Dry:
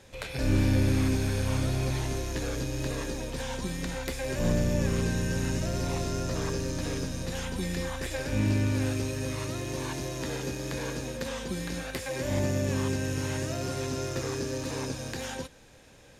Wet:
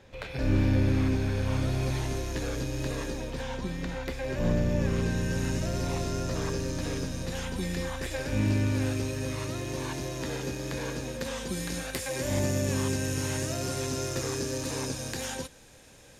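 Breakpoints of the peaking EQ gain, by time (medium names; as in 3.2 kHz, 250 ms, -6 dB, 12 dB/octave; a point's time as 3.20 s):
peaking EQ 10 kHz 1.6 oct
1.33 s -13 dB
1.90 s -2.5 dB
3.05 s -2.5 dB
3.59 s -13 dB
4.64 s -13 dB
5.44 s -1.5 dB
11.06 s -1.5 dB
11.61 s +6.5 dB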